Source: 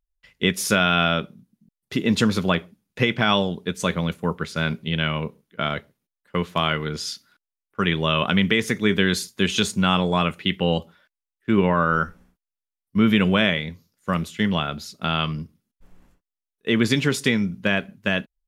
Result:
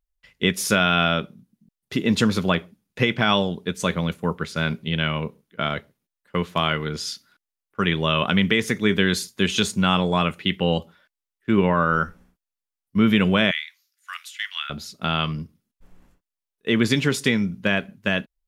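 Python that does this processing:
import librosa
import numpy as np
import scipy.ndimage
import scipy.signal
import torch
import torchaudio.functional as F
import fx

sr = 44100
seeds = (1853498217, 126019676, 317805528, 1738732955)

y = fx.cheby2_highpass(x, sr, hz=450.0, order=4, stop_db=60, at=(13.51, 14.7))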